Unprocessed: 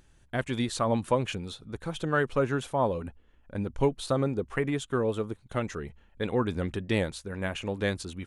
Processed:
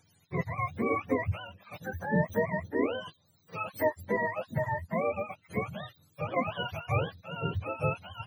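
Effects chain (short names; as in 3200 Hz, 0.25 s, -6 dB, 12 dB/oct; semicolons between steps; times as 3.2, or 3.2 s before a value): spectrum mirrored in octaves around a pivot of 510 Hz; gain -1 dB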